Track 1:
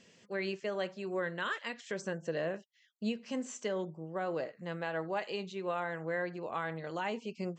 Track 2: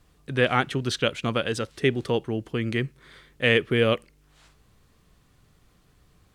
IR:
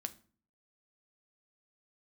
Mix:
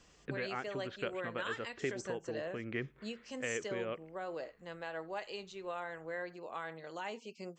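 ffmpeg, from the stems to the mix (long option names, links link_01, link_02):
-filter_complex "[0:a]volume=-5.5dB,asplit=2[link_01][link_02];[1:a]lowpass=frequency=2400:width=0.5412,lowpass=frequency=2400:width=1.3066,acompressor=threshold=-25dB:ratio=6,volume=-1dB[link_03];[link_02]apad=whole_len=279888[link_04];[link_03][link_04]sidechaincompress=threshold=-46dB:ratio=8:attack=28:release=730[link_05];[link_01][link_05]amix=inputs=2:normalize=0,bass=frequency=250:gain=-8,treble=frequency=4000:gain=6"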